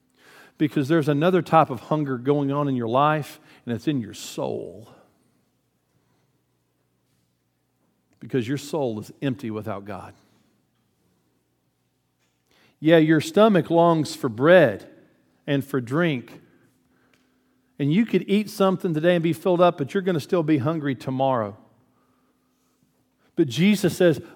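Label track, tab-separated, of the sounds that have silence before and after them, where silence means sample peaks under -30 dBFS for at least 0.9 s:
8.230000	10.050000	sound
12.820000	16.280000	sound
17.800000	21.510000	sound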